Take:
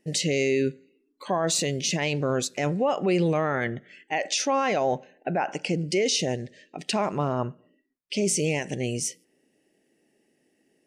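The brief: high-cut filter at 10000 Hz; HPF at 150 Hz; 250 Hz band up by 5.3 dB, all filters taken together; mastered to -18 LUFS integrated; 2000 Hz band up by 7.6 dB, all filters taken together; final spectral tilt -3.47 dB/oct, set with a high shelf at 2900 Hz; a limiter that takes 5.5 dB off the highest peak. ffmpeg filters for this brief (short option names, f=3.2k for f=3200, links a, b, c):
-af "highpass=150,lowpass=10k,equalizer=f=250:t=o:g=8,equalizer=f=2k:t=o:g=7.5,highshelf=f=2.9k:g=4,volume=6dB,alimiter=limit=-7dB:level=0:latency=1"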